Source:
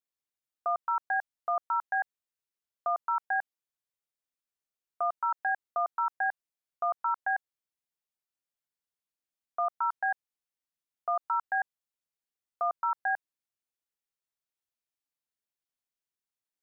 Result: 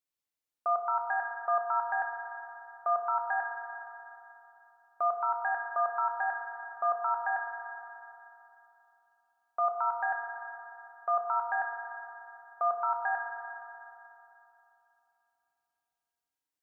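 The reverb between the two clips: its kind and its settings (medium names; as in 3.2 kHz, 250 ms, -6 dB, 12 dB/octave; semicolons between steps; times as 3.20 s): FDN reverb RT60 3.1 s, high-frequency decay 0.65×, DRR 1.5 dB; trim -1 dB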